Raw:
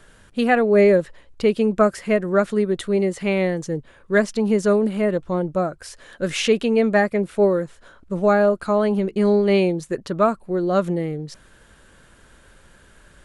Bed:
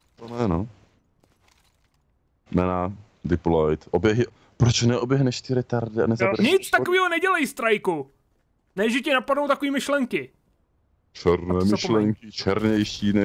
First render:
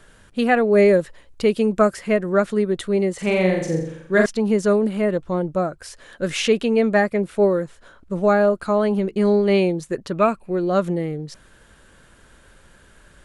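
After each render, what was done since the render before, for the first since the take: 0.72–1.94 s: treble shelf 6.8 kHz +7 dB; 3.14–4.26 s: flutter echo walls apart 7.4 m, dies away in 0.7 s; 10.12–10.70 s: peaking EQ 2.5 kHz +14 dB 0.27 oct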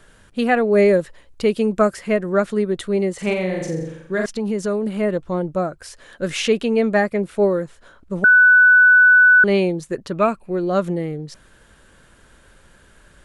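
3.33–4.87 s: compression 2:1, threshold -21 dBFS; 8.24–9.44 s: bleep 1.49 kHz -7.5 dBFS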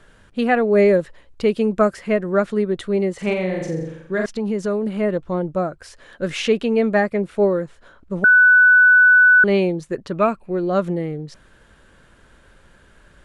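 treble shelf 6.8 kHz -10.5 dB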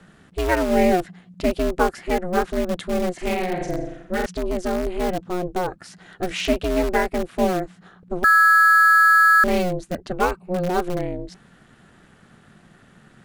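in parallel at -11 dB: integer overflow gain 16.5 dB; on the sum: ring modulator 180 Hz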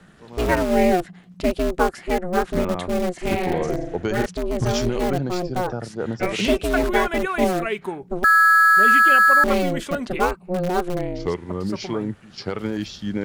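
add bed -5.5 dB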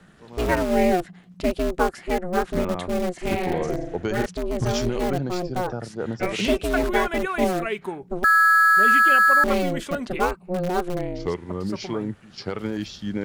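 trim -2 dB

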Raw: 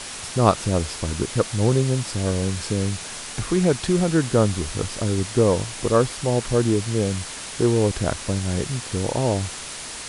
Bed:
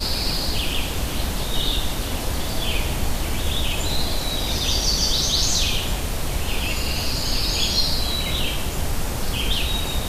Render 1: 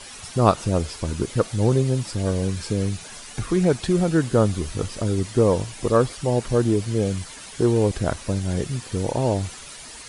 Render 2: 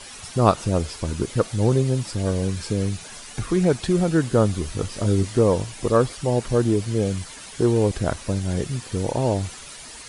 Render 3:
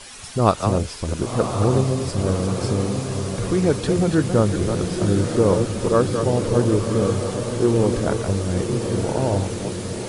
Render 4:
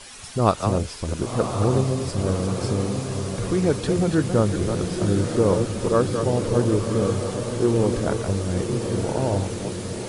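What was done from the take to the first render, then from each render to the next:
noise reduction 10 dB, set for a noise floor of -35 dBFS
4.93–5.39 s: doubling 20 ms -5.5 dB
chunks repeated in reverse 190 ms, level -7 dB; on a send: echo that smears into a reverb 1072 ms, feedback 54%, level -6 dB
trim -2 dB

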